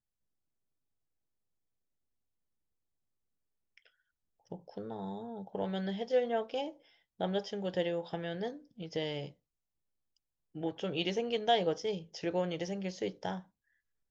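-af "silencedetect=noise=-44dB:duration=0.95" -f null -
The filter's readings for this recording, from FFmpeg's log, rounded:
silence_start: 0.00
silence_end: 3.78 | silence_duration: 3.78
silence_start: 9.29
silence_end: 10.55 | silence_duration: 1.26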